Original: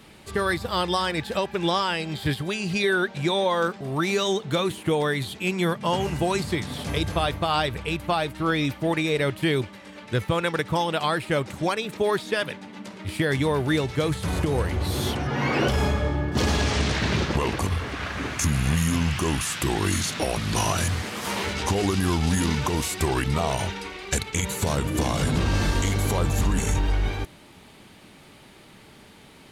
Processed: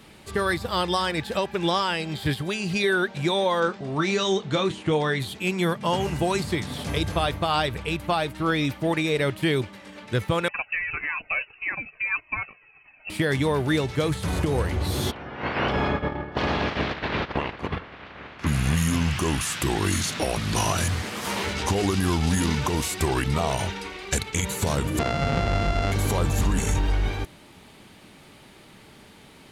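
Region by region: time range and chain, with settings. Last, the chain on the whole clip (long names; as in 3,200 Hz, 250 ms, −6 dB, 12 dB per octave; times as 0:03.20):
0:03.60–0:05.20: low-pass filter 7,400 Hz 24 dB per octave + double-tracking delay 26 ms −11 dB
0:10.48–0:13.10: noise gate −31 dBFS, range −10 dB + voice inversion scrambler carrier 2,800 Hz + flanger whose copies keep moving one way falling 1.7 Hz
0:15.10–0:18.46: ceiling on every frequency bin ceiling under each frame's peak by 16 dB + noise gate −25 dBFS, range −9 dB + high-frequency loss of the air 340 metres
0:24.99–0:25.92: samples sorted by size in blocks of 64 samples + low-pass filter 3,900 Hz + parametric band 73 Hz −7 dB 0.38 octaves
whole clip: no processing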